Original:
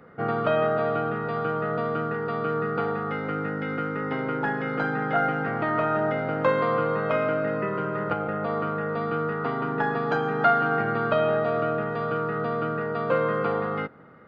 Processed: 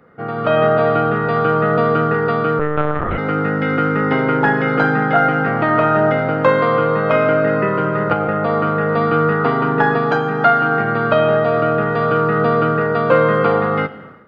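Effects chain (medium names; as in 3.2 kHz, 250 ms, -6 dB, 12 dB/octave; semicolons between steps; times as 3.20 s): Schroeder reverb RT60 0.97 s, combs from 26 ms, DRR 14 dB; 2.59–3.18 s: monotone LPC vocoder at 8 kHz 150 Hz; level rider gain up to 13 dB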